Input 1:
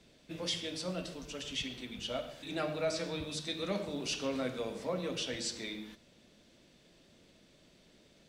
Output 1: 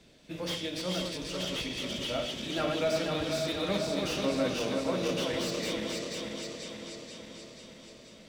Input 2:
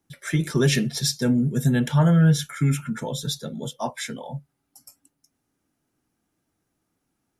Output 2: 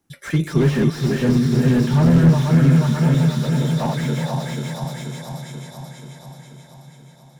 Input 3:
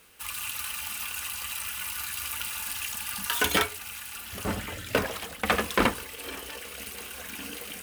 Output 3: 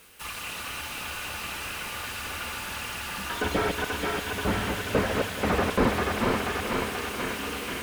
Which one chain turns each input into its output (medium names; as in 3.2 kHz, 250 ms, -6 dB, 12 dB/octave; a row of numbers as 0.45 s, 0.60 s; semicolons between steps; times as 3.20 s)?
backward echo that repeats 242 ms, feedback 77%, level -4.5 dB; echo that smears into a reverb 498 ms, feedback 60%, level -14 dB; slew-rate limiter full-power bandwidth 53 Hz; trim +3.5 dB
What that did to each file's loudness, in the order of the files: +5.0 LU, +5.0 LU, +1.5 LU